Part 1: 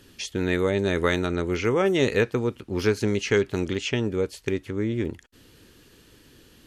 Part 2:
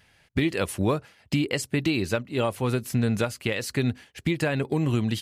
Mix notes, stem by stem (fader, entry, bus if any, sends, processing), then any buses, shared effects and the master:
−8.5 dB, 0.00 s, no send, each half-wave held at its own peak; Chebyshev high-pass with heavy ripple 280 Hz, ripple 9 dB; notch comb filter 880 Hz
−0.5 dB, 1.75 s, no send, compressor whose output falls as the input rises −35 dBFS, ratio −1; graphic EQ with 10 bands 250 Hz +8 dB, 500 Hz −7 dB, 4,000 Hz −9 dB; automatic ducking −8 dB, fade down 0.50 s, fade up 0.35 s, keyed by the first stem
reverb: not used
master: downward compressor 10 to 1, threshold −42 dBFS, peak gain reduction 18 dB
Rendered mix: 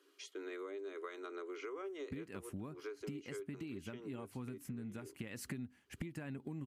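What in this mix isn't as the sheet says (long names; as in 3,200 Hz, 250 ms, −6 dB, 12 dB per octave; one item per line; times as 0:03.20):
stem 1: missing each half-wave held at its own peak
stem 2: missing compressor whose output falls as the input rises −35 dBFS, ratio −1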